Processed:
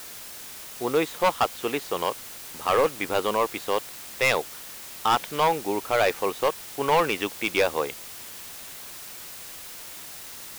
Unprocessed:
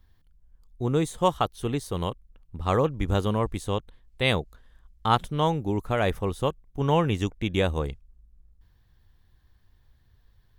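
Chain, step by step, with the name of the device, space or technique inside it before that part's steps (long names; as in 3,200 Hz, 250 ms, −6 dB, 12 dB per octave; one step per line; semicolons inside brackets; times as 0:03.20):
drive-through speaker (band-pass filter 490–3,300 Hz; parametric band 2,400 Hz +5.5 dB 0.32 octaves; hard clipping −22.5 dBFS, distortion −7 dB; white noise bed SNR 13 dB)
level +7.5 dB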